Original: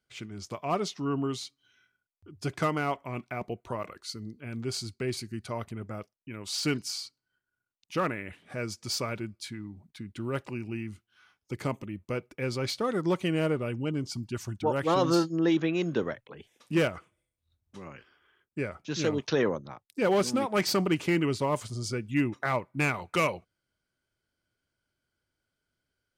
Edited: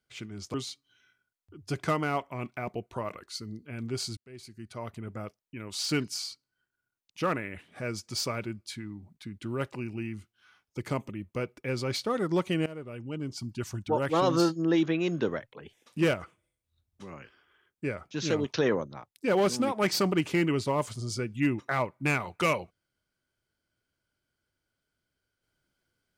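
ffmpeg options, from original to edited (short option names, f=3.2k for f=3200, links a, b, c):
-filter_complex "[0:a]asplit=4[a][b][c][d];[a]atrim=end=0.542[e];[b]atrim=start=1.278:end=4.91,asetpts=PTS-STARTPTS,afade=t=out:st=3.628:d=0.004:c=hsin[f];[c]atrim=start=4.91:end=13.4,asetpts=PTS-STARTPTS,afade=t=in:d=1,afade=t=out:st=8.486:d=0.004:c=hsin:silence=0.133352[g];[d]atrim=start=13.4,asetpts=PTS-STARTPTS,afade=t=in:d=0.97:silence=0.133352[h];[f][g][h]concat=n=3:v=0:a=1[i];[e][i]acrossfade=d=0.004:c1=hsin:c2=hsin"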